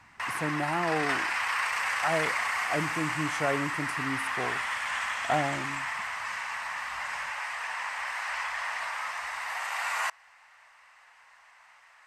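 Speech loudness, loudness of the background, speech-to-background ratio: -33.5 LUFS, -31.0 LUFS, -2.5 dB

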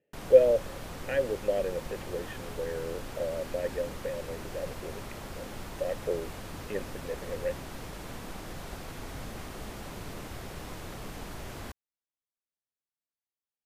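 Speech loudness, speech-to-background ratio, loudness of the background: -31.0 LUFS, 11.0 dB, -42.0 LUFS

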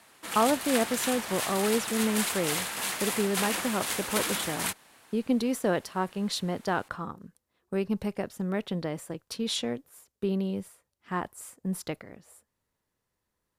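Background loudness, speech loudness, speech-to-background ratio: -30.5 LUFS, -31.0 LUFS, -0.5 dB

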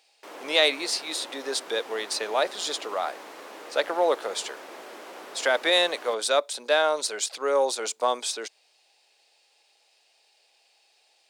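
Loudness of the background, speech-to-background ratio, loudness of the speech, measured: -42.5 LUFS, 16.5 dB, -26.0 LUFS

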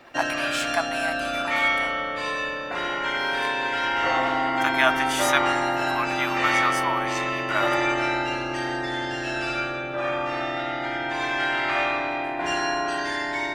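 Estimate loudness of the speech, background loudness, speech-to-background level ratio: -28.5 LUFS, -24.5 LUFS, -4.0 dB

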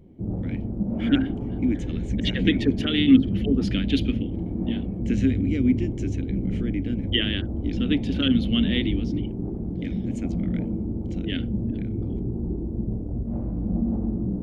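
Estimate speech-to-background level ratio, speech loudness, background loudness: 2.5 dB, -26.0 LUFS, -28.5 LUFS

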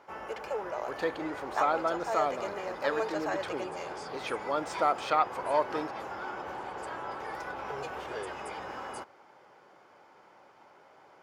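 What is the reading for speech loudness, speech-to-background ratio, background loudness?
-32.5 LUFS, 5.0 dB, -37.5 LUFS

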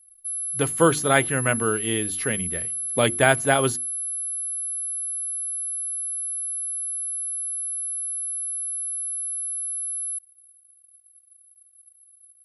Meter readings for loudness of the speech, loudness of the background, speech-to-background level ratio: -23.0 LUFS, -26.5 LUFS, 3.5 dB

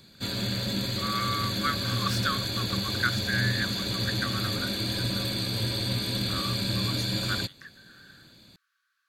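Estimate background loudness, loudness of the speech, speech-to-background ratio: -28.5 LUFS, -34.0 LUFS, -5.5 dB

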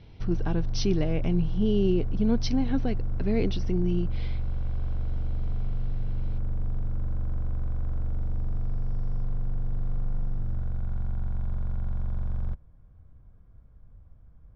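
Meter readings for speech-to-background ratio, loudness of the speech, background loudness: 5.5 dB, -28.5 LUFS, -34.0 LUFS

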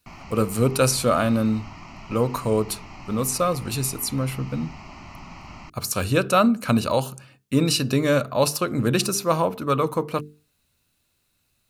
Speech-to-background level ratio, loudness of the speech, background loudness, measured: 19.0 dB, -23.0 LUFS, -42.0 LUFS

